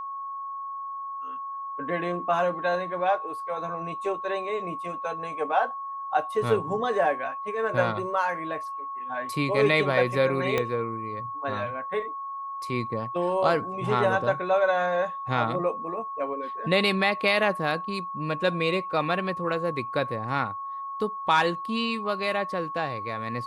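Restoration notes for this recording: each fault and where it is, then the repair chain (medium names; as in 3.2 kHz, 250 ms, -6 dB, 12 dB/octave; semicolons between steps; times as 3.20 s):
whine 1.1 kHz -32 dBFS
10.58 s: pop -11 dBFS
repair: de-click; band-stop 1.1 kHz, Q 30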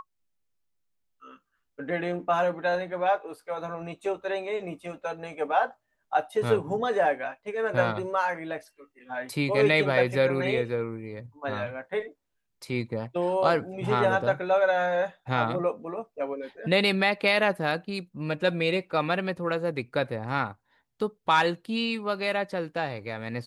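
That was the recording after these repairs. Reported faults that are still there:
10.58 s: pop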